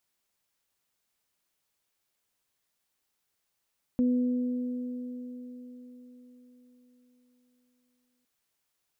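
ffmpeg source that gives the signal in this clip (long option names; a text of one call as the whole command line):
ffmpeg -f lavfi -i "aevalsrc='0.0891*pow(10,-3*t/4.61)*sin(2*PI*248*t)+0.0188*pow(10,-3*t/4.79)*sin(2*PI*496*t)':duration=4.26:sample_rate=44100" out.wav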